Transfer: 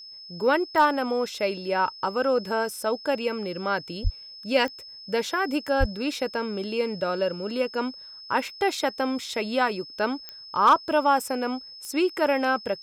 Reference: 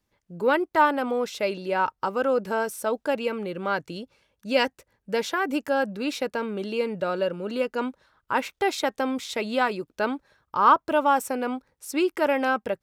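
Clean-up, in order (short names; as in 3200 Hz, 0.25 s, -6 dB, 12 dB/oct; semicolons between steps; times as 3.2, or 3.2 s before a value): clip repair -10 dBFS; de-click; notch 5200 Hz, Q 30; de-plosive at 4.03/5.79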